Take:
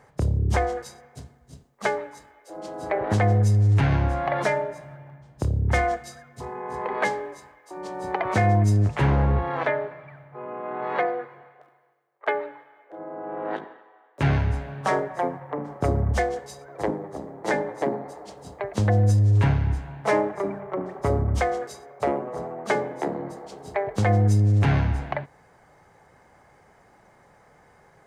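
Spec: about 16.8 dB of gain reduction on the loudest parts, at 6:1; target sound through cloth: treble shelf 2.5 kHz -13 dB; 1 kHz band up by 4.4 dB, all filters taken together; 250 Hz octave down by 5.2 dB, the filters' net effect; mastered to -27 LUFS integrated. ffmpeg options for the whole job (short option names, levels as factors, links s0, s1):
-af "equalizer=f=250:t=o:g=-8.5,equalizer=f=1000:t=o:g=9,acompressor=threshold=0.0178:ratio=6,highshelf=f=2500:g=-13,volume=4.47"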